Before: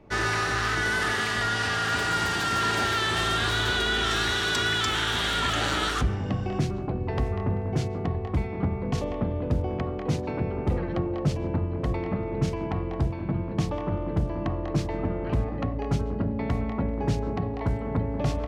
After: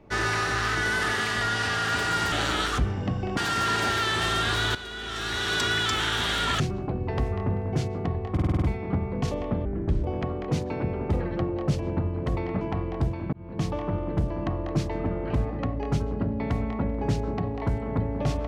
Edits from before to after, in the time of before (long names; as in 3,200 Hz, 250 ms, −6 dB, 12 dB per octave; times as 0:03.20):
0:03.70–0:04.48: fade in quadratic, from −13 dB
0:05.55–0:06.60: move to 0:02.32
0:08.32: stutter 0.05 s, 7 plays
0:09.35–0:09.61: play speed 67%
0:12.18–0:12.60: remove
0:13.32–0:13.67: fade in